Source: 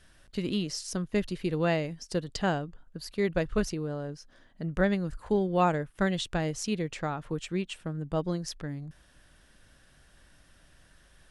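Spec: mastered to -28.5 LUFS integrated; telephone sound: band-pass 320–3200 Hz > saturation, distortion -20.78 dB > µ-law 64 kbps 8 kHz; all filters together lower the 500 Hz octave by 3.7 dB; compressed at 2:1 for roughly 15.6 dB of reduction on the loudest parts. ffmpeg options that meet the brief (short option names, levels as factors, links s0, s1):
-af "equalizer=f=500:t=o:g=-3.5,acompressor=threshold=0.00251:ratio=2,highpass=320,lowpass=3200,asoftclip=threshold=0.0224,volume=13.3" -ar 8000 -c:a pcm_mulaw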